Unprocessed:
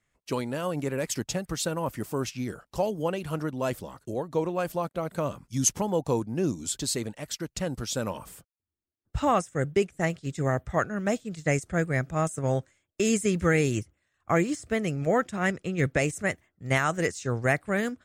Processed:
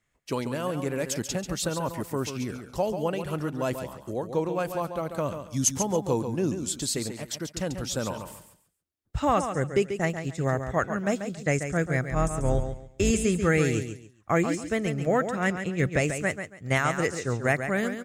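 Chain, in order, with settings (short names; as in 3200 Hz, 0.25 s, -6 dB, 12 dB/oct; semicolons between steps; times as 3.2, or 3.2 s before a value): 12.09–13.11 octaver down 2 oct, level +1 dB; feedback echo 0.139 s, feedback 24%, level -8.5 dB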